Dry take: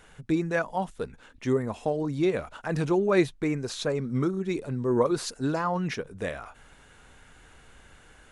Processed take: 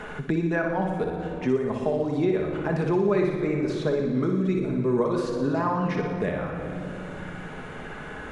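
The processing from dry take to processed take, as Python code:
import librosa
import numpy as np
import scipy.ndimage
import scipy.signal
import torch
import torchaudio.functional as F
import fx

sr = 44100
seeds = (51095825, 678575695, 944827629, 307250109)

p1 = fx.lowpass(x, sr, hz=1900.0, slope=6)
p2 = p1 + fx.room_flutter(p1, sr, wall_m=10.1, rt60_s=0.62, dry=0)
p3 = fx.room_shoebox(p2, sr, seeds[0], volume_m3=4000.0, walls='mixed', distance_m=1.4)
y = fx.band_squash(p3, sr, depth_pct=70)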